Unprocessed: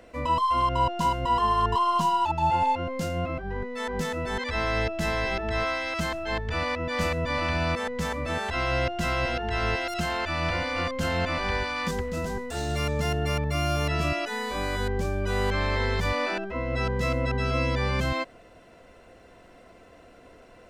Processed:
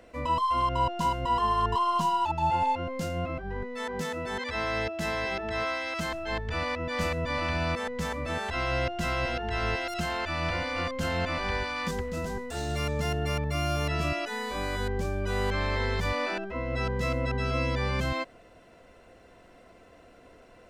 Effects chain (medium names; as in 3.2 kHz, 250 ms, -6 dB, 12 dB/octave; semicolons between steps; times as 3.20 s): 3.84–6.09 s: high-pass 120 Hz 6 dB/octave; trim -2.5 dB